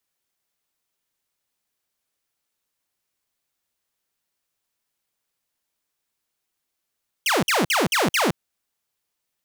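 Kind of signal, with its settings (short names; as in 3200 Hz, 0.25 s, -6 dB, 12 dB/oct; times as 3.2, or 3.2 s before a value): burst of laser zaps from 3300 Hz, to 140 Hz, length 0.17 s saw, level -15 dB, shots 5, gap 0.05 s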